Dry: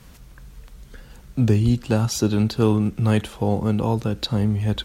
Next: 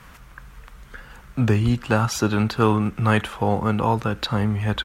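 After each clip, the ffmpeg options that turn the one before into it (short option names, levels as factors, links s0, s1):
-af "firequalizer=gain_entry='entry(340,0);entry(1200,13);entry(4100,0)':delay=0.05:min_phase=1,volume=0.841"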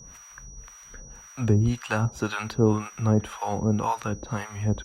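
-filter_complex "[0:a]acrossover=split=690[s0][s1];[s0]aeval=exprs='val(0)*(1-1/2+1/2*cos(2*PI*1.9*n/s))':c=same[s2];[s1]aeval=exprs='val(0)*(1-1/2-1/2*cos(2*PI*1.9*n/s))':c=same[s3];[s2][s3]amix=inputs=2:normalize=0,aeval=exprs='val(0)+0.00501*sin(2*PI*5800*n/s)':c=same"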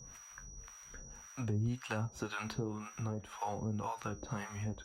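-af "acompressor=threshold=0.0398:ratio=6,flanger=delay=7.6:depth=7.7:regen=62:speed=0.56:shape=triangular,volume=0.794"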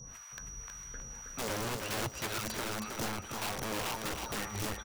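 -af "aeval=exprs='(mod(56.2*val(0)+1,2)-1)/56.2':c=same,aecho=1:1:319|638|957:0.562|0.146|0.038,volume=1.58"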